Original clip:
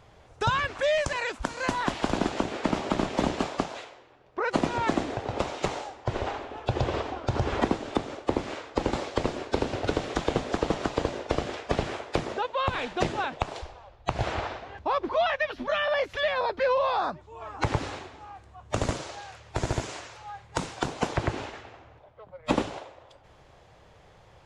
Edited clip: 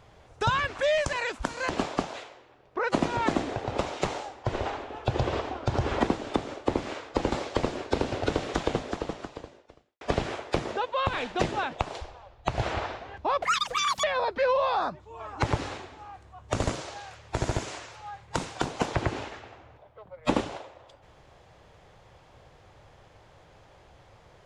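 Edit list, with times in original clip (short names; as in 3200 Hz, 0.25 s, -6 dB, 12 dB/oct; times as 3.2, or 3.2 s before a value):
1.69–3.3 cut
10.23–11.62 fade out quadratic
15.03–16.25 speed 198%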